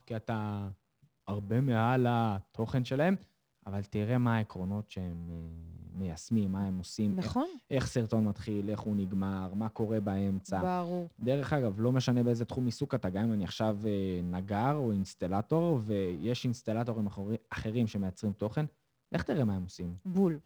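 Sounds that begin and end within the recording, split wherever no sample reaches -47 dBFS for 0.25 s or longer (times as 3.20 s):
1.28–3.21 s
3.66–18.67 s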